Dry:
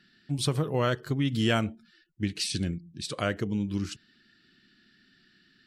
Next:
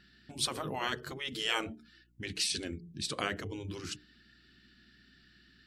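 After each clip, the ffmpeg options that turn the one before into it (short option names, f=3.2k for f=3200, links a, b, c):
-af "afftfilt=real='re*lt(hypot(re,im),0.158)':imag='im*lt(hypot(re,im),0.158)':win_size=1024:overlap=0.75,bandreject=f=60:t=h:w=6,bandreject=f=120:t=h:w=6,bandreject=f=180:t=h:w=6,bandreject=f=240:t=h:w=6,bandreject=f=300:t=h:w=6,bandreject=f=360:t=h:w=6,bandreject=f=420:t=h:w=6,aeval=exprs='val(0)+0.000398*(sin(2*PI*60*n/s)+sin(2*PI*2*60*n/s)/2+sin(2*PI*3*60*n/s)/3+sin(2*PI*4*60*n/s)/4+sin(2*PI*5*60*n/s)/5)':c=same"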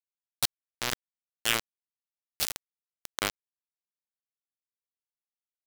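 -af "acrusher=bits=3:mix=0:aa=0.000001,volume=5.5dB"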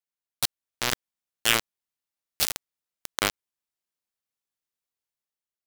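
-af "dynaudnorm=f=130:g=9:m=5dB"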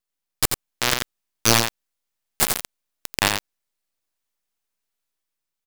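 -filter_complex "[0:a]aeval=exprs='abs(val(0))':c=same,aecho=1:1:88:0.473,asplit=2[a][b];[b]asoftclip=type=hard:threshold=-17.5dB,volume=-6dB[c];[a][c]amix=inputs=2:normalize=0,volume=4dB"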